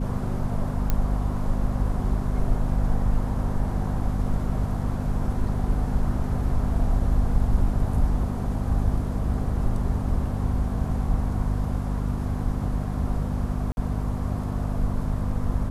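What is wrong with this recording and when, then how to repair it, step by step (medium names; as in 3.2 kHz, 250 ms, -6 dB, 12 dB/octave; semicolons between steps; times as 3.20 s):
hum 50 Hz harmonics 5 -28 dBFS
0.90 s: pop -10 dBFS
13.72–13.77 s: dropout 51 ms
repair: de-click; de-hum 50 Hz, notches 5; interpolate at 13.72 s, 51 ms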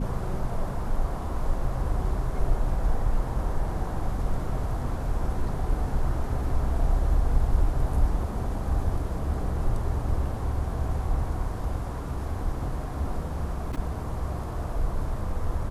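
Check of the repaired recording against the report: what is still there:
nothing left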